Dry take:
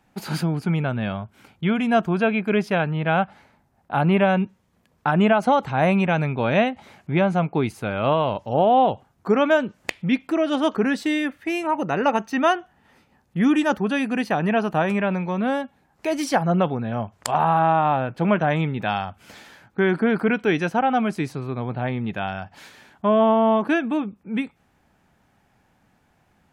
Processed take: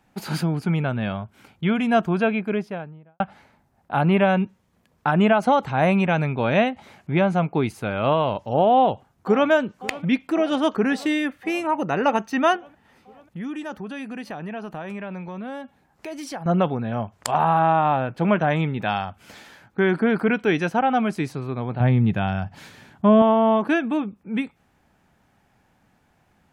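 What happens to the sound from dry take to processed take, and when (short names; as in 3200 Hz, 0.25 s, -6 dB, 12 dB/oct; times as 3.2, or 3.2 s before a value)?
2.12–3.2 studio fade out
8.73–9.5 echo throw 0.54 s, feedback 75%, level -18 dB
12.56–16.46 compressor 2.5:1, threshold -35 dBFS
21.8–23.22 bell 120 Hz +11.5 dB 2.1 oct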